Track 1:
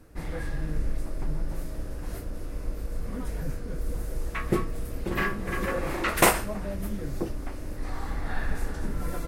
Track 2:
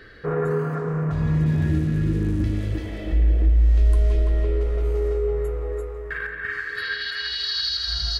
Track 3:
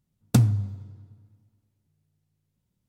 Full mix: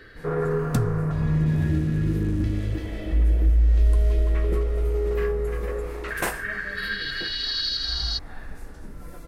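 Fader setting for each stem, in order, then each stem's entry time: -9.0 dB, -1.5 dB, -6.0 dB; 0.00 s, 0.00 s, 0.40 s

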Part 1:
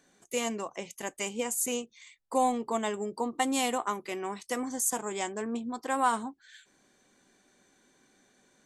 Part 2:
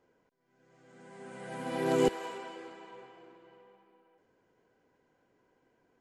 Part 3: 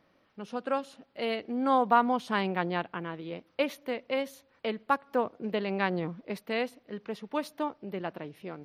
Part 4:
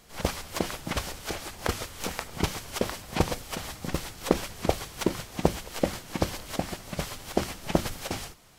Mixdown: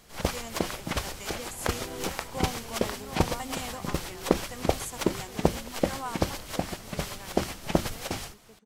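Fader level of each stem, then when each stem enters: -10.0 dB, -12.0 dB, -19.5 dB, 0.0 dB; 0.00 s, 0.00 s, 1.40 s, 0.00 s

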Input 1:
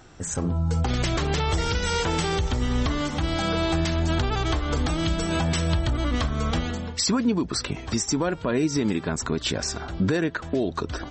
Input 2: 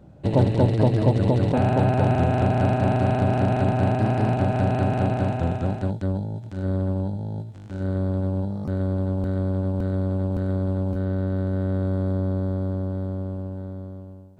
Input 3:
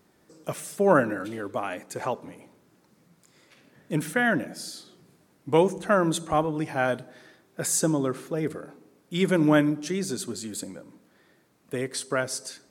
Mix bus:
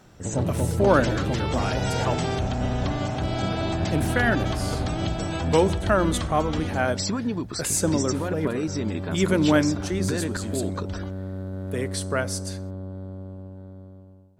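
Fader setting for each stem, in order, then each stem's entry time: -5.0 dB, -8.0 dB, +0.5 dB; 0.00 s, 0.00 s, 0.00 s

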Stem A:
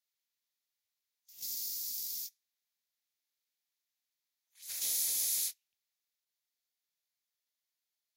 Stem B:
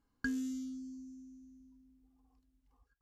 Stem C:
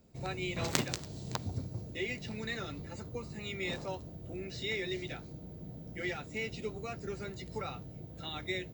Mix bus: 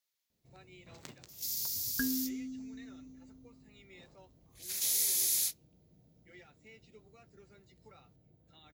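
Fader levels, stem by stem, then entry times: +2.5 dB, +1.5 dB, -19.0 dB; 0.00 s, 1.75 s, 0.30 s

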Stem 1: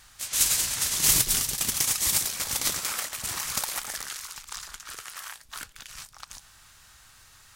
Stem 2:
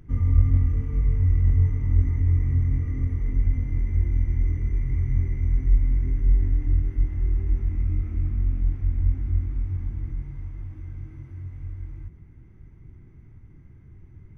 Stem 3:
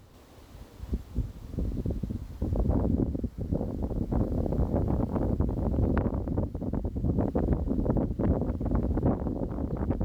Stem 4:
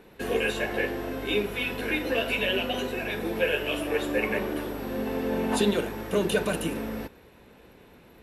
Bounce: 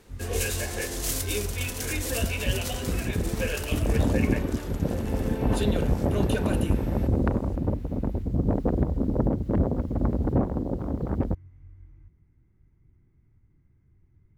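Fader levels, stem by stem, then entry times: -10.0 dB, -14.0 dB, +2.5 dB, -5.5 dB; 0.00 s, 0.00 s, 1.30 s, 0.00 s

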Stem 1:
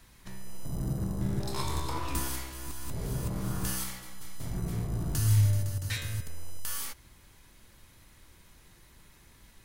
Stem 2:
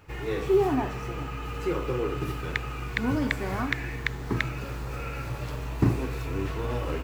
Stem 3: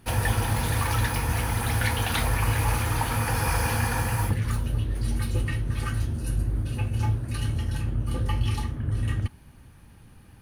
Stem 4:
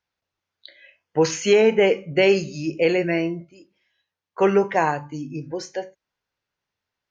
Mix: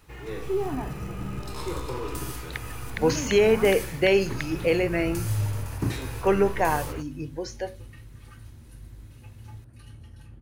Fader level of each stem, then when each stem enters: -3.5 dB, -5.5 dB, -18.5 dB, -3.5 dB; 0.00 s, 0.00 s, 2.45 s, 1.85 s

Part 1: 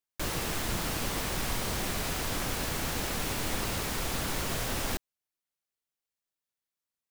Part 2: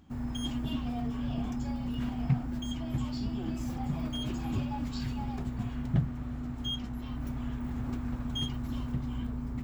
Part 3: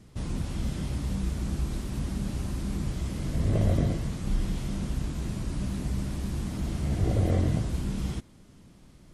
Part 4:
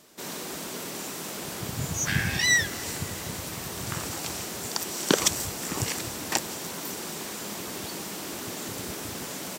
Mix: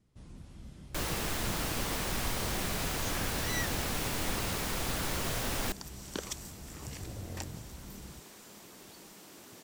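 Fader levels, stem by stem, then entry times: -1.5 dB, mute, -18.0 dB, -16.5 dB; 0.75 s, mute, 0.00 s, 1.05 s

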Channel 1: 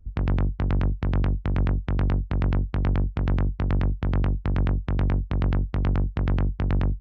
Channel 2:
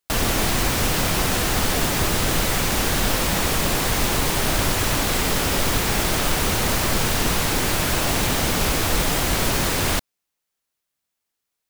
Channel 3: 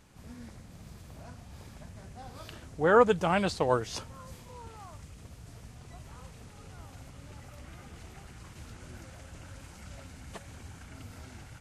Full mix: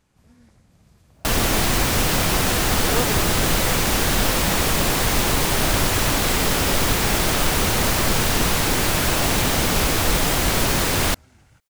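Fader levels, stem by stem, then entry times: mute, +1.5 dB, -7.0 dB; mute, 1.15 s, 0.00 s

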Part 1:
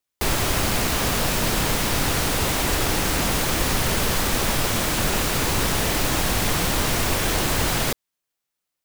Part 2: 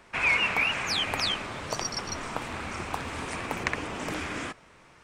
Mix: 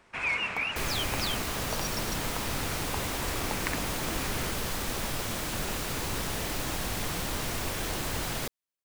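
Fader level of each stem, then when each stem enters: -10.5 dB, -5.5 dB; 0.55 s, 0.00 s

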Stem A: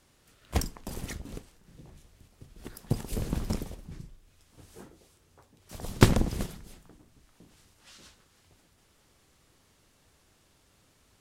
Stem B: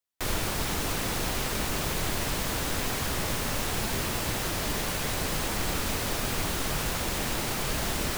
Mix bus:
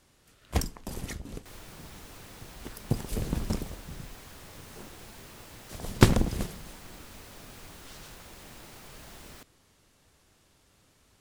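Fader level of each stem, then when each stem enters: +0.5 dB, -18.5 dB; 0.00 s, 1.25 s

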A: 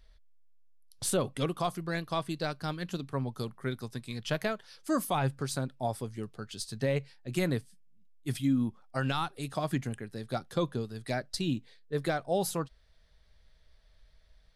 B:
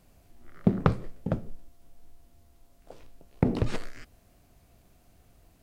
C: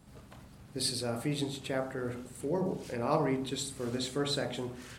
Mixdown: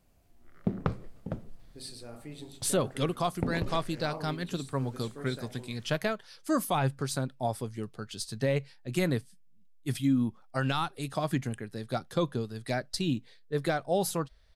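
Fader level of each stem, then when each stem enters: +1.5 dB, -7.0 dB, -11.5 dB; 1.60 s, 0.00 s, 1.00 s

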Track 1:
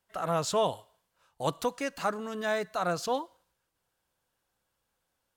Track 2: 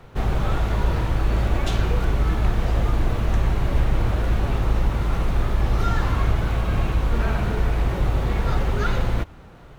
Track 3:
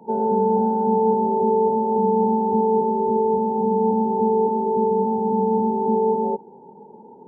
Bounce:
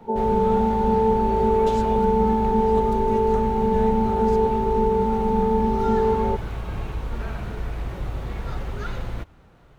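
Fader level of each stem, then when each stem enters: -13.0 dB, -8.0 dB, -1.0 dB; 1.30 s, 0.00 s, 0.00 s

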